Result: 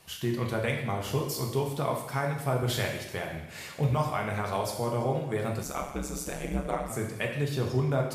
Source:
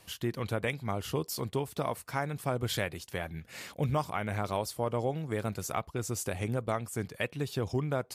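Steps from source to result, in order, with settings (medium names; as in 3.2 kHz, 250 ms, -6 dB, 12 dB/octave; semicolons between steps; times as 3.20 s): two-slope reverb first 0.89 s, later 2.5 s, DRR 0 dB; 5.63–6.90 s: ring modulator 68 Hz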